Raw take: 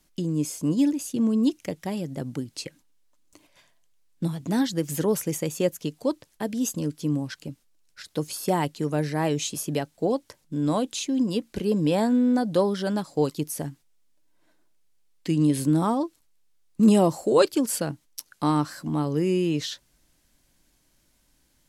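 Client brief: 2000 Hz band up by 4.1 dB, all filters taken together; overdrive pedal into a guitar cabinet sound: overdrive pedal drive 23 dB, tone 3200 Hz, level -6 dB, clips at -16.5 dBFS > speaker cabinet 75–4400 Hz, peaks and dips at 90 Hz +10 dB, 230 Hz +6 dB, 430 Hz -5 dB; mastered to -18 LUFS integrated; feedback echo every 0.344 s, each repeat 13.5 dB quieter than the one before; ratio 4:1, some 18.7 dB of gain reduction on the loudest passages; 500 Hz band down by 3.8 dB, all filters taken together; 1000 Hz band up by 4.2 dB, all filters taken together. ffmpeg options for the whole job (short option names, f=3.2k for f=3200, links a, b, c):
-filter_complex "[0:a]equalizer=f=500:t=o:g=-4,equalizer=f=1k:t=o:g=6,equalizer=f=2k:t=o:g=3.5,acompressor=threshold=-37dB:ratio=4,aecho=1:1:344|688:0.211|0.0444,asplit=2[a][b];[b]highpass=f=720:p=1,volume=23dB,asoftclip=type=tanh:threshold=-16.5dB[c];[a][c]amix=inputs=2:normalize=0,lowpass=f=3.2k:p=1,volume=-6dB,highpass=75,equalizer=f=90:t=q:w=4:g=10,equalizer=f=230:t=q:w=4:g=6,equalizer=f=430:t=q:w=4:g=-5,lowpass=f=4.4k:w=0.5412,lowpass=f=4.4k:w=1.3066,volume=12.5dB"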